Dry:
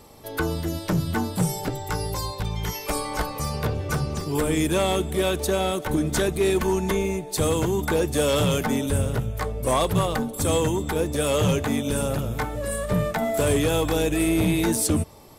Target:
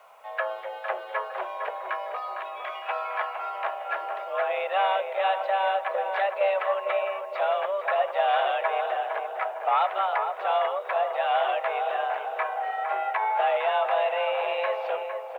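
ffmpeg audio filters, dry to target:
ffmpeg -i in.wav -filter_complex "[0:a]highpass=frequency=390:width_type=q:width=0.5412,highpass=frequency=390:width_type=q:width=1.307,lowpass=frequency=2700:width_type=q:width=0.5176,lowpass=frequency=2700:width_type=q:width=0.7071,lowpass=frequency=2700:width_type=q:width=1.932,afreqshift=200,asplit=2[link_01][link_02];[link_02]adelay=457,lowpass=frequency=1500:poles=1,volume=-5dB,asplit=2[link_03][link_04];[link_04]adelay=457,lowpass=frequency=1500:poles=1,volume=0.52,asplit=2[link_05][link_06];[link_06]adelay=457,lowpass=frequency=1500:poles=1,volume=0.52,asplit=2[link_07][link_08];[link_08]adelay=457,lowpass=frequency=1500:poles=1,volume=0.52,asplit=2[link_09][link_10];[link_10]adelay=457,lowpass=frequency=1500:poles=1,volume=0.52,asplit=2[link_11][link_12];[link_12]adelay=457,lowpass=frequency=1500:poles=1,volume=0.52,asplit=2[link_13][link_14];[link_14]adelay=457,lowpass=frequency=1500:poles=1,volume=0.52[link_15];[link_01][link_03][link_05][link_07][link_09][link_11][link_13][link_15]amix=inputs=8:normalize=0,acrusher=bits=10:mix=0:aa=0.000001" out.wav

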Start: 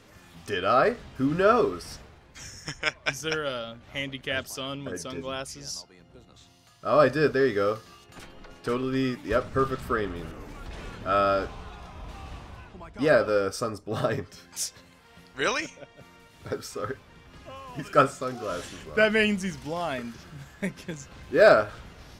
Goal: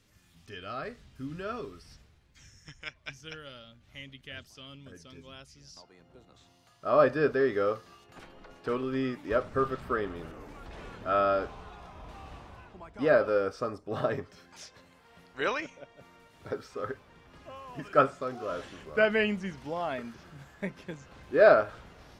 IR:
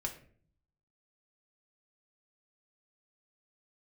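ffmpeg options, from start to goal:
-filter_complex "[0:a]acrossover=split=4700[link_01][link_02];[link_02]acompressor=threshold=-56dB:ratio=4:attack=1:release=60[link_03];[link_01][link_03]amix=inputs=2:normalize=0,asetnsamples=nb_out_samples=441:pad=0,asendcmd='5.77 equalizer g 5.5',equalizer=frequency=690:width=0.38:gain=-11,volume=-7.5dB"

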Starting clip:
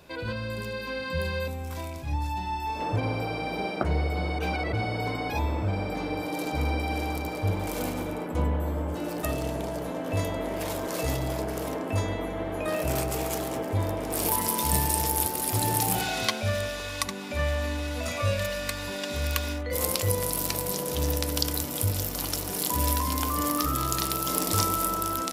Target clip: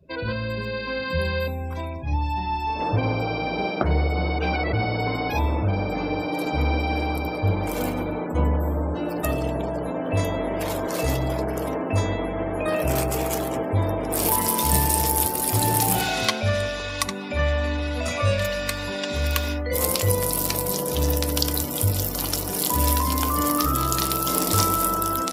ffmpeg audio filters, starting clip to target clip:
ffmpeg -i in.wav -af "acrusher=bits=7:mode=log:mix=0:aa=0.000001,afftdn=noise_reduction=31:noise_floor=-45,acontrast=81,volume=-2dB" out.wav

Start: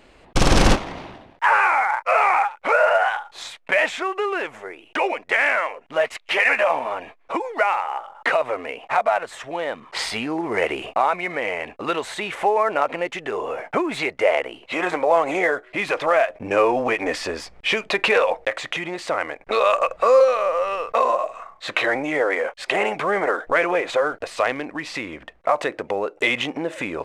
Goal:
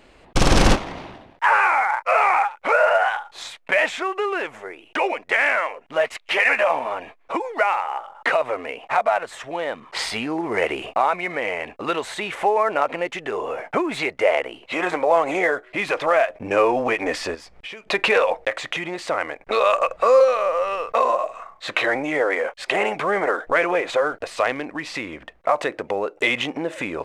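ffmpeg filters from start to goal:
ffmpeg -i in.wav -filter_complex "[0:a]asplit=3[link_01][link_02][link_03];[link_01]afade=type=out:start_time=17.34:duration=0.02[link_04];[link_02]acompressor=threshold=-37dB:ratio=4,afade=type=in:start_time=17.34:duration=0.02,afade=type=out:start_time=17.86:duration=0.02[link_05];[link_03]afade=type=in:start_time=17.86:duration=0.02[link_06];[link_04][link_05][link_06]amix=inputs=3:normalize=0" out.wav

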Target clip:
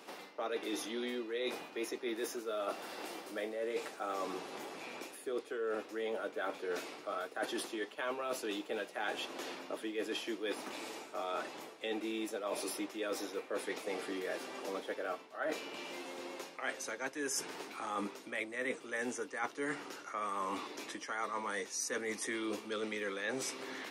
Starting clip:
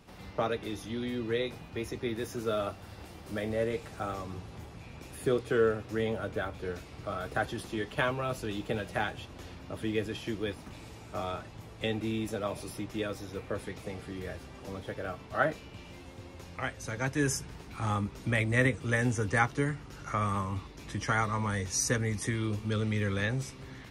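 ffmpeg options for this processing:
ffmpeg -i in.wav -af "highpass=frequency=300:width=0.5412,highpass=frequency=300:width=1.3066,areverse,acompressor=threshold=-41dB:ratio=16,areverse,volume=6.5dB" out.wav

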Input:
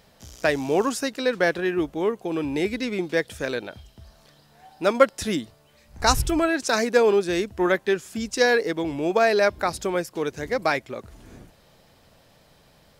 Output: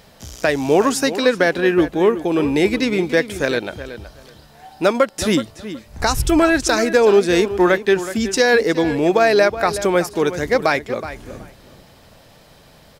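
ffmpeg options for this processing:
ffmpeg -i in.wav -filter_complex "[0:a]alimiter=limit=-12.5dB:level=0:latency=1:release=243,asplit=2[link_01][link_02];[link_02]adelay=372,lowpass=frequency=3700:poles=1,volume=-12.5dB,asplit=2[link_03][link_04];[link_04]adelay=372,lowpass=frequency=3700:poles=1,volume=0.18[link_05];[link_01][link_03][link_05]amix=inputs=3:normalize=0,volume=8.5dB" out.wav

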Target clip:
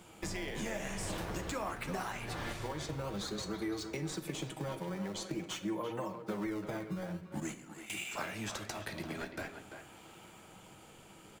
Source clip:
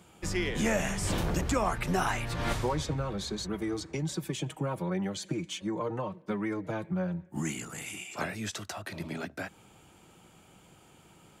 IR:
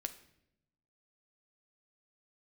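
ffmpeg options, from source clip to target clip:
-filter_complex "[0:a]asettb=1/sr,asplit=3[link_01][link_02][link_03];[link_01]atrim=end=7.404[link_04];[link_02]atrim=start=7.4:end=7.9,asetpts=PTS-STARTPTS,afade=type=in:duration=0.004:curve=qsin,afade=type=out:start_time=0.496:duration=0.004:curve=qsin,agate=range=-17dB:threshold=-32dB:ratio=16:detection=peak[link_05];[link_03]atrim=start=7.896[link_06];[link_04][link_05]acrossfade=duration=0.004:curve1=hsin:curve2=qsin[link_07];[link_07][link_06]acrossfade=duration=0.004:curve1=qsin:curve2=hsin,lowshelf=frequency=390:gain=-7,acompressor=threshold=-41dB:ratio=6,asplit=2[link_08][link_09];[link_09]acrusher=samples=19:mix=1:aa=0.000001:lfo=1:lforange=30.4:lforate=0.47,volume=-6dB[link_10];[link_08][link_10]amix=inputs=2:normalize=0,asplit=2[link_11][link_12];[link_12]adelay=340,highpass=300,lowpass=3400,asoftclip=type=hard:threshold=-34dB,volume=-8dB[link_13];[link_11][link_13]amix=inputs=2:normalize=0[link_14];[1:a]atrim=start_sample=2205[link_15];[link_14][link_15]afir=irnorm=-1:irlink=0,volume=3.5dB"

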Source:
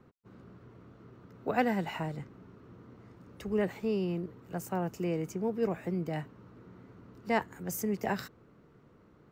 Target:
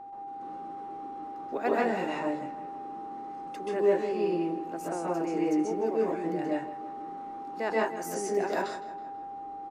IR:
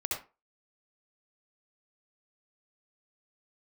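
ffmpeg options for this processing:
-filter_complex "[0:a]lowshelf=frequency=240:width_type=q:width=3:gain=-6.5,asplit=2[link_01][link_02];[link_02]acompressor=threshold=-44dB:ratio=6,volume=-2.5dB[link_03];[link_01][link_03]amix=inputs=2:normalize=0,asplit=2[link_04][link_05];[link_05]adelay=155,lowpass=frequency=4900:poles=1,volume=-14dB,asplit=2[link_06][link_07];[link_07]adelay=155,lowpass=frequency=4900:poles=1,volume=0.51,asplit=2[link_08][link_09];[link_09]adelay=155,lowpass=frequency=4900:poles=1,volume=0.51,asplit=2[link_10][link_11];[link_11]adelay=155,lowpass=frequency=4900:poles=1,volume=0.51,asplit=2[link_12][link_13];[link_13]adelay=155,lowpass=frequency=4900:poles=1,volume=0.51[link_14];[link_04][link_06][link_08][link_10][link_12][link_14]amix=inputs=6:normalize=0,acrossover=split=130|2600[link_15][link_16][link_17];[link_15]aeval=exprs='(mod(1500*val(0)+1,2)-1)/1500':channel_layout=same[link_18];[link_18][link_16][link_17]amix=inputs=3:normalize=0,aeval=exprs='val(0)+0.0141*sin(2*PI*830*n/s)':channel_layout=same[link_19];[1:a]atrim=start_sample=2205,afade=type=out:start_time=0.14:duration=0.01,atrim=end_sample=6615,asetrate=22491,aresample=44100[link_20];[link_19][link_20]afir=irnorm=-1:irlink=0,asetrate=42336,aresample=44100,volume=-7dB"

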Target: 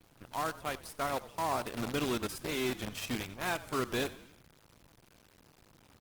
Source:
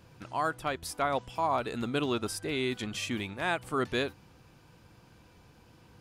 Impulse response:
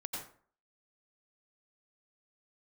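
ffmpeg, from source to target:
-filter_complex "[0:a]lowshelf=frequency=420:gain=2.5,acrusher=bits=6:dc=4:mix=0:aa=0.000001,asplit=2[link_01][link_02];[link_02]asplit=4[link_03][link_04][link_05][link_06];[link_03]adelay=92,afreqshift=-40,volume=-17dB[link_07];[link_04]adelay=184,afreqshift=-80,volume=-22.8dB[link_08];[link_05]adelay=276,afreqshift=-120,volume=-28.7dB[link_09];[link_06]adelay=368,afreqshift=-160,volume=-34.5dB[link_10];[link_07][link_08][link_09][link_10]amix=inputs=4:normalize=0[link_11];[link_01][link_11]amix=inputs=2:normalize=0,volume=-4.5dB" -ar 48000 -c:a libopus -b:a 20k

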